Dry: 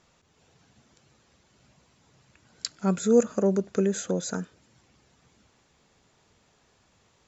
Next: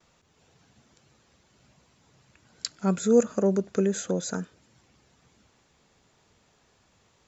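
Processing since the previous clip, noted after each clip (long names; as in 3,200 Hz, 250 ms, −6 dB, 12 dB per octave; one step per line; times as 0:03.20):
noise gate with hold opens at −56 dBFS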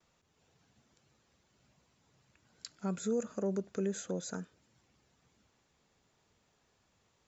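brickwall limiter −15 dBFS, peak gain reduction 6.5 dB
level −9 dB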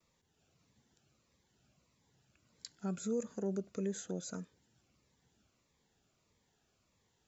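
phaser whose notches keep moving one way falling 1.6 Hz
level −2 dB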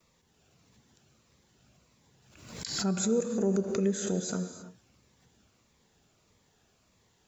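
reverb whose tail is shaped and stops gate 350 ms flat, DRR 7 dB
background raised ahead of every attack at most 63 dB per second
level +7.5 dB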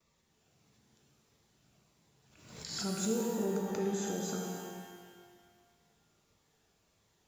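reverb with rising layers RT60 1.7 s, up +12 semitones, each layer −8 dB, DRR 1.5 dB
level −7 dB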